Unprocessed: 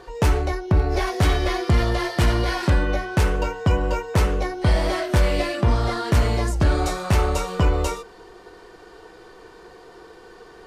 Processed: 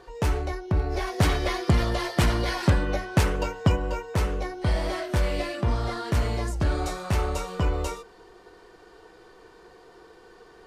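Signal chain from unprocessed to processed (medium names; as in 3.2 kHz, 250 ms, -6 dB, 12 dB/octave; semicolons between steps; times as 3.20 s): 1.18–3.76 s: harmonic-percussive split percussive +7 dB; trim -6 dB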